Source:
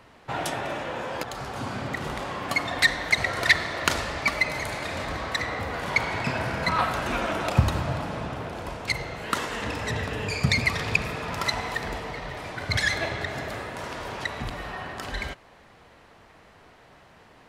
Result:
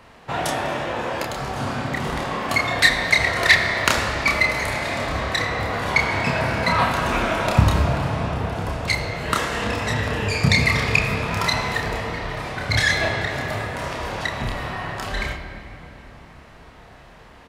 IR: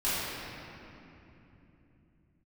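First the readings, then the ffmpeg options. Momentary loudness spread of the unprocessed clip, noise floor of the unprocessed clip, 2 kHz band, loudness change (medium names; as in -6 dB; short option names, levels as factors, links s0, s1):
12 LU, -54 dBFS, +6.0 dB, +6.0 dB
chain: -filter_complex "[0:a]asplit=2[s0][s1];[s1]adelay=29,volume=0.631[s2];[s0][s2]amix=inputs=2:normalize=0,asplit=2[s3][s4];[1:a]atrim=start_sample=2205[s5];[s4][s5]afir=irnorm=-1:irlink=0,volume=0.141[s6];[s3][s6]amix=inputs=2:normalize=0,volume=1.41"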